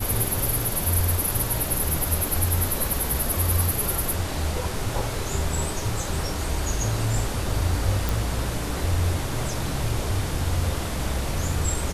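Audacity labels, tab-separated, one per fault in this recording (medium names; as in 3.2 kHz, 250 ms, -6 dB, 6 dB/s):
8.090000	8.090000	pop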